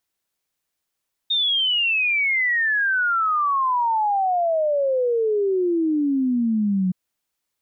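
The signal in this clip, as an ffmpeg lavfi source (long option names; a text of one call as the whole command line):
ffmpeg -f lavfi -i "aevalsrc='0.133*clip(min(t,5.62-t)/0.01,0,1)*sin(2*PI*3700*5.62/log(180/3700)*(exp(log(180/3700)*t/5.62)-1))':duration=5.62:sample_rate=44100" out.wav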